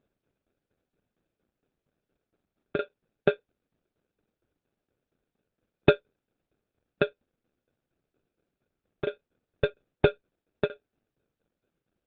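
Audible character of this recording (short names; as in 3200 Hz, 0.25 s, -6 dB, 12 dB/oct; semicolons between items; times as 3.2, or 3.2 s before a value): tremolo saw down 4.3 Hz, depth 95%; aliases and images of a low sample rate 1000 Hz, jitter 0%; Opus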